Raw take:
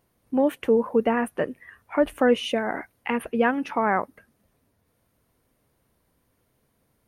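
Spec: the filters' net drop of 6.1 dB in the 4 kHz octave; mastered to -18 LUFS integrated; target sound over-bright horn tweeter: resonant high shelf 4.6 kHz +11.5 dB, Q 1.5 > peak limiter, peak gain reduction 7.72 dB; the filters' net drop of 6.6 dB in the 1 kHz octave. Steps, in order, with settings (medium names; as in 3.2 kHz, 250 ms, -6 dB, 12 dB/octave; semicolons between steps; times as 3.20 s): peaking EQ 1 kHz -8.5 dB; peaking EQ 4 kHz -6 dB; resonant high shelf 4.6 kHz +11.5 dB, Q 1.5; trim +11.5 dB; peak limiter -7 dBFS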